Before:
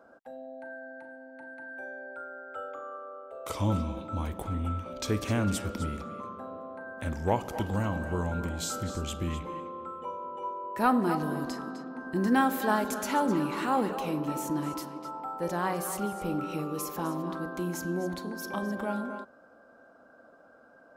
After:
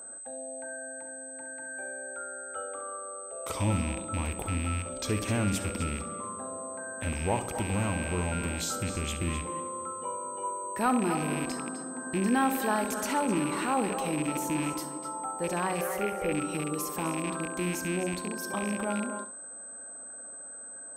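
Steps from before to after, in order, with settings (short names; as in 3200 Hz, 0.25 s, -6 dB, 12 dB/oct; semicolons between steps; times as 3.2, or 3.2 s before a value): rattling part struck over -37 dBFS, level -28 dBFS; in parallel at 0 dB: limiter -24 dBFS, peak gain reduction 10.5 dB; on the sum: whine 8200 Hz -37 dBFS; 15.81–16.32 graphic EQ 125/250/500/1000/2000/4000/8000 Hz -3/-7/+10/-5/+10/-6/-7 dB; flutter echo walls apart 11.5 m, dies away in 0.3 s; gain -5 dB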